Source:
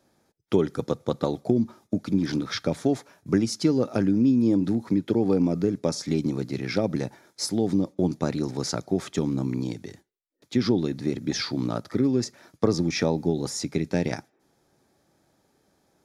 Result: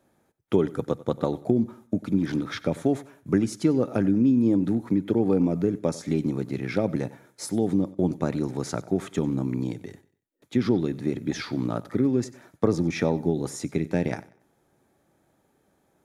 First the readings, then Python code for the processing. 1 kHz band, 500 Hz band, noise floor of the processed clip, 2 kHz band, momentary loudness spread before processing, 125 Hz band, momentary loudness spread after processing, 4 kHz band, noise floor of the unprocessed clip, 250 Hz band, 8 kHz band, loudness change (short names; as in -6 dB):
0.0 dB, 0.0 dB, -69 dBFS, -1.0 dB, 7 LU, 0.0 dB, 8 LU, -7.5 dB, -70 dBFS, 0.0 dB, -5.0 dB, 0.0 dB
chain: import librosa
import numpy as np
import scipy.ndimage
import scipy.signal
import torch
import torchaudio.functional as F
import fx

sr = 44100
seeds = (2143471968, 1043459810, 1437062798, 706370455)

y = fx.peak_eq(x, sr, hz=5000.0, db=-11.0, octaves=0.75)
y = fx.echo_feedback(y, sr, ms=94, feedback_pct=32, wet_db=-19.5)